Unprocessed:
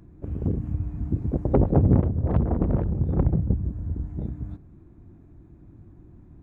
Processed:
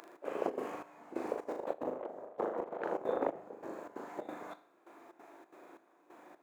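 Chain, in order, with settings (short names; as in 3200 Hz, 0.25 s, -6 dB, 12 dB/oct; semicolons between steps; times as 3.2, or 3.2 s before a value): HPF 540 Hz 24 dB/oct; negative-ratio compressor -44 dBFS, ratio -0.5; flutter echo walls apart 6.7 m, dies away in 0.5 s; step gate "xx.xxx.xxx....x" 182 bpm -12 dB; gain +7 dB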